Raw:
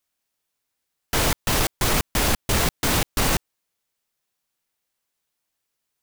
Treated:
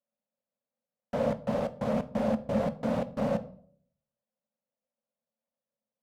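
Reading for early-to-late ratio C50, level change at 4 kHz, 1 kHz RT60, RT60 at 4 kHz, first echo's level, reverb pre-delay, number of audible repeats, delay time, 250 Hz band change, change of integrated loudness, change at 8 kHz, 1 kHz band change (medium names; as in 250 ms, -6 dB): 17.5 dB, -25.5 dB, 0.50 s, 0.40 s, no echo, 5 ms, no echo, no echo, -1.0 dB, -8.5 dB, under -30 dB, -9.5 dB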